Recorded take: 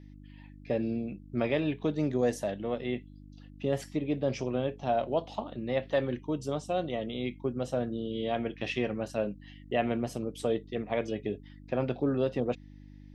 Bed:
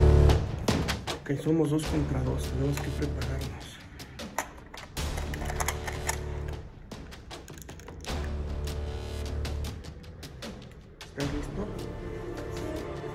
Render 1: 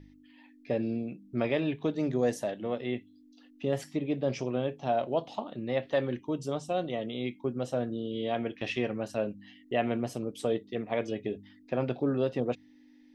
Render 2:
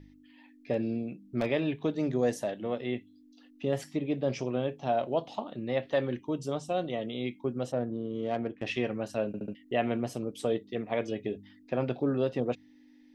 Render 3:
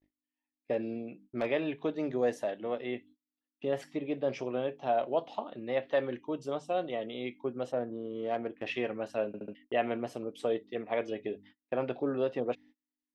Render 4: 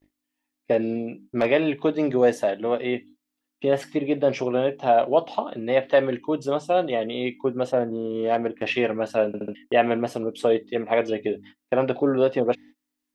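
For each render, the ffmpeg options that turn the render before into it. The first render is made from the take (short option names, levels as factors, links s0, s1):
-af "bandreject=f=50:t=h:w=4,bandreject=f=100:t=h:w=4,bandreject=f=150:t=h:w=4,bandreject=f=200:t=h:w=4"
-filter_complex "[0:a]asettb=1/sr,asplit=3[s0][s1][s2];[s0]atrim=end=0.734[s3];[s1]atrim=start=0.73:end=1.51,asetpts=PTS-STARTPTS,afade=t=in:d=0.004:c=qsin,afade=t=out:st=0.776:d=0.004:c=qsin,aeval=exprs='0.1*(abs(mod(val(0)/0.1+3,4)-2)-1)':c=same[s4];[s2]atrim=start=1.506[s5];[s3][s4]acrossfade=d=0.004:c1=hsin:c2=qsin[s6];[s6][s5]acrossfade=d=0.004:c1=qsin:c2=hsin,asplit=3[s7][s8][s9];[s7]afade=t=out:st=7.71:d=0.02[s10];[s8]adynamicsmooth=sensitivity=1.5:basefreq=1300,afade=t=in:st=7.71:d=0.02,afade=t=out:st=8.65:d=0.02[s11];[s9]afade=t=in:st=8.65:d=0.02[s12];[s10][s11][s12]amix=inputs=3:normalize=0,asplit=5[s13][s14][s15][s16][s17];[s13]atrim=end=9.342[s18];[s14]atrim=start=9.268:end=9.342[s19];[s15]atrim=start=9.268:end=9.342[s20];[s16]atrim=start=9.268:end=9.342[s21];[s17]atrim=start=9.548[s22];[s18][s19]acrossfade=d=0.004:c1=hsin:c2=hsin[s23];[s23][s20]acrossfade=d=0.004:c1=hsin:c2=hsin[s24];[s24][s21]acrossfade=d=0.004:c1=hsin:c2=hsin[s25];[s25][s22]acrossfade=d=0.004:c1=hsin:c2=hsin"
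-af "agate=range=0.02:threshold=0.00316:ratio=16:detection=peak,bass=f=250:g=-11,treble=f=4000:g=-10"
-af "volume=3.35"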